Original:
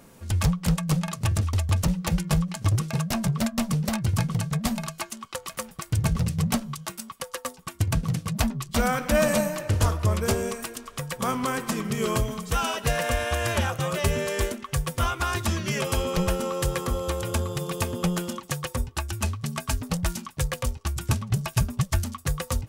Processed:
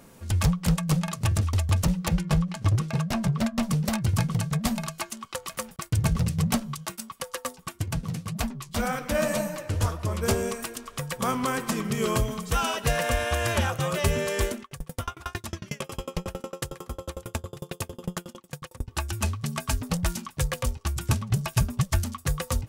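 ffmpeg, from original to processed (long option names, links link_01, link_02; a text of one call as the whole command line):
ffmpeg -i in.wav -filter_complex "[0:a]asettb=1/sr,asplit=3[link_01][link_02][link_03];[link_01]atrim=end=2.084[link_04];[link_02]atrim=start=2.08:end=3.63,asetpts=PTS-STARTPTS,afade=type=in:duration=0.004:curve=qsin,afade=type=out:start_time=1.546:duration=0.004:curve=qsin,highshelf=frequency=6400:gain=-10[link_05];[link_03]atrim=start=3.626[link_06];[link_04][link_05]acrossfade=duration=0.004:curve1=hsin:curve2=qsin[link_07];[link_07][link_06]acrossfade=duration=0.004:curve1=qsin:curve2=hsin,asettb=1/sr,asplit=3[link_08][link_09][link_10];[link_08]atrim=end=5.764[link_11];[link_09]atrim=start=5.76:end=7.13,asetpts=PTS-STARTPTS,afade=type=in:duration=0.004:curve=qsin,afade=type=out:start_time=1.366:duration=0.004:curve=qsin,agate=range=-33dB:threshold=-42dB:ratio=3:release=100:detection=peak[link_12];[link_10]atrim=start=7.126[link_13];[link_11][link_12]acrossfade=duration=0.004:curve1=hsin:curve2=qsin[link_14];[link_14][link_13]acrossfade=duration=0.004:curve1=qsin:curve2=hsin,asplit=3[link_15][link_16][link_17];[link_15]afade=type=out:start_time=7.71:duration=0.02[link_18];[link_16]flanger=delay=4:depth=9.6:regen=45:speed=1.9:shape=triangular,afade=type=in:start_time=7.71:duration=0.02,afade=type=out:start_time=10.22:duration=0.02[link_19];[link_17]afade=type=in:start_time=10.22:duration=0.02[link_20];[link_18][link_19][link_20]amix=inputs=3:normalize=0,asettb=1/sr,asplit=3[link_21][link_22][link_23];[link_21]atrim=end=14.624[link_24];[link_22]atrim=start=14.62:end=18.88,asetpts=PTS-STARTPTS,afade=type=in:duration=0.004:curve=qsin,afade=type=out:start_time=4.256:duration=0.004:curve=qsin,aeval=exprs='val(0)*pow(10,-34*if(lt(mod(11*n/s,1),2*abs(11)/1000),1-mod(11*n/s,1)/(2*abs(11)/1000),(mod(11*n/s,1)-2*abs(11)/1000)/(1-2*abs(11)/1000))/20)':channel_layout=same[link_25];[link_23]atrim=start=18.876[link_26];[link_24][link_25]acrossfade=duration=0.004:curve1=hsin:curve2=qsin[link_27];[link_27][link_26]acrossfade=duration=0.004:curve1=qsin:curve2=hsin" out.wav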